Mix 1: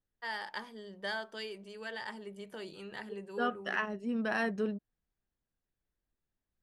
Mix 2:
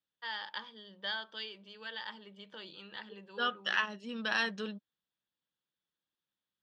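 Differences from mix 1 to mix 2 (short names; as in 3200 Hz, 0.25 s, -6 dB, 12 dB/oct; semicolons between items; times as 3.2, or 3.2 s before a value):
second voice: remove tape spacing loss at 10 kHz 23 dB; master: add speaker cabinet 220–5000 Hz, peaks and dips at 250 Hz -7 dB, 400 Hz -10 dB, 690 Hz -10 dB, 2100 Hz -5 dB, 3400 Hz +10 dB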